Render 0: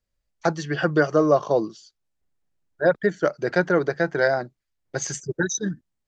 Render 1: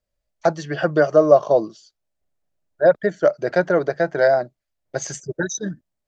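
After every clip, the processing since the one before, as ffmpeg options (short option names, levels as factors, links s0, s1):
-af "equalizer=f=620:t=o:w=0.46:g=10.5,volume=0.891"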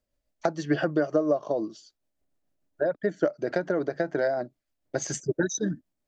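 -af "acompressor=threshold=0.0708:ratio=6,equalizer=f=280:w=2:g=9.5,tremolo=f=6.8:d=0.33"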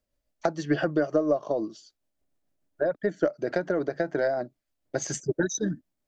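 -af "aeval=exprs='0.335*(cos(1*acos(clip(val(0)/0.335,-1,1)))-cos(1*PI/2))+0.00422*(cos(4*acos(clip(val(0)/0.335,-1,1)))-cos(4*PI/2))':c=same"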